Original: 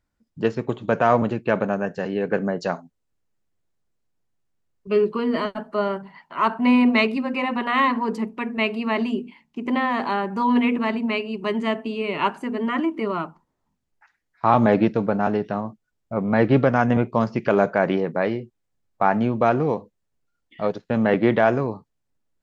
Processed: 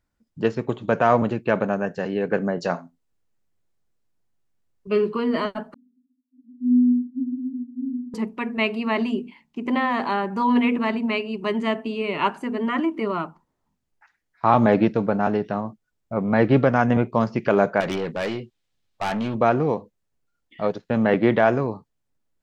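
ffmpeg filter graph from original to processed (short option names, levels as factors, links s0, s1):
-filter_complex "[0:a]asettb=1/sr,asplit=3[s0][s1][s2];[s0]atrim=end=2.554[s3];[s1]atrim=start=2.55:end=5.19,asetpts=PTS-STARTPTS,afade=t=in:d=0.004:c=qsin,afade=t=out:st=2.636:d=0.004:c=qsin,asplit=2[s4][s5];[s5]adelay=23,volume=0.282[s6];[s4][s6]amix=inputs=2:normalize=0,atrim=end_sample=116424,aecho=1:1:83:0.0794,atrim=end_sample=116424[s7];[s2]atrim=start=5.186[s8];[s3][s7]acrossfade=d=0.004:c1=hsin:c2=qsin[s9];[s9][s8]acrossfade=d=0.004:c1=qsin:c2=hsin,asettb=1/sr,asplit=3[s10][s11][s12];[s10]atrim=end=5.744[s13];[s11]atrim=start=5.74:end=8.14,asetpts=PTS-STARTPTS,afade=t=in:d=0.004:c=qsin,afade=t=out:st=2.396:d=0.004:c=qsin,asuperpass=centerf=260:order=8:qfactor=7.2,aecho=1:1:98:0.178,atrim=end_sample=105840[s14];[s12]atrim=start=8.136[s15];[s13][s14]acrossfade=d=0.004:c1=hsin:c2=qsin[s16];[s16][s15]acrossfade=d=0.004:c1=qsin:c2=hsin,asettb=1/sr,asplit=3[s17][s18][s19];[s17]atrim=end=17.804[s20];[s18]atrim=start=17.8:end=19.35,asetpts=PTS-STARTPTS,afade=t=in:d=0.004:c=qsin,afade=t=out:st=1.546:d=0.004:c=qsin,equalizer=f=3500:w=0.85:g=12,aeval=exprs='(tanh(11.2*val(0)+0.15)-tanh(0.15))/11.2':c=same[s21];[s19]atrim=start=19.346[s22];[s20][s21]acrossfade=d=0.004:c1=hsin:c2=qsin[s23];[s23][s22]acrossfade=d=0.004:c1=qsin:c2=hsin"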